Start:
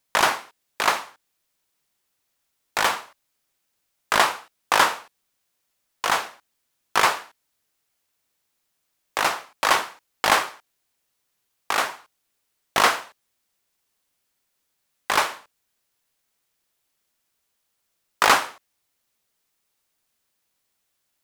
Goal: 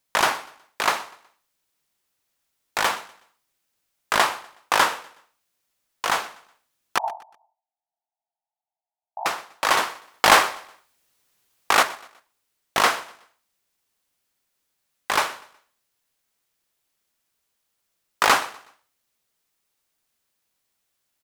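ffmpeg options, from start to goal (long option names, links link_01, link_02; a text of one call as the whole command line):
ffmpeg -i in.wav -filter_complex "[0:a]asettb=1/sr,asplit=3[link_01][link_02][link_03];[link_01]atrim=end=6.984[link_04];[link_02]atrim=start=6.98:end=9.26,asetpts=PTS-STARTPTS,afade=type=in:duration=0.004:curve=qsin,afade=type=out:start_time=2.276:duration=0.004:curve=qsin,asuperpass=centerf=770:order=8:qfactor=2.9[link_05];[link_03]atrim=start=9.256[link_06];[link_04][link_05]acrossfade=duration=0.004:curve1=hsin:curve2=qsin[link_07];[link_07][link_06]acrossfade=duration=0.004:curve1=qsin:curve2=hsin,asettb=1/sr,asplit=3[link_08][link_09][link_10];[link_08]atrim=end=9.774[link_11];[link_09]atrim=start=9.77:end=11.83,asetpts=PTS-STARTPTS,afade=type=in:duration=0.004:curve=qsin,afade=type=out:start_time=2.056:duration=0.004:curve=qsin,acontrast=84[link_12];[link_10]atrim=start=11.826[link_13];[link_11][link_12]acrossfade=duration=0.004:curve1=hsin:curve2=qsin[link_14];[link_14][link_13]acrossfade=duration=0.004:curve1=qsin:curve2=hsin,aecho=1:1:123|246|369:0.0891|0.033|0.0122,volume=-1dB" out.wav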